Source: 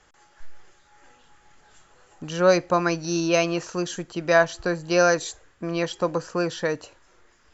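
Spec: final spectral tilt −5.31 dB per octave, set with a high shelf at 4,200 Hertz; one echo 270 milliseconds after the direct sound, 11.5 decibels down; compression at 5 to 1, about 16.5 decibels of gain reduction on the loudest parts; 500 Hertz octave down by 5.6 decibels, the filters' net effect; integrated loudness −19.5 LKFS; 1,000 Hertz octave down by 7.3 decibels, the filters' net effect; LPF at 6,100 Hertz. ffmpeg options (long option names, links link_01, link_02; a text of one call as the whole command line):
ffmpeg -i in.wav -af "lowpass=6100,equalizer=frequency=500:width_type=o:gain=-4,equalizer=frequency=1000:width_type=o:gain=-9,highshelf=frequency=4200:gain=-7,acompressor=threshold=-37dB:ratio=5,aecho=1:1:270:0.266,volume=21dB" out.wav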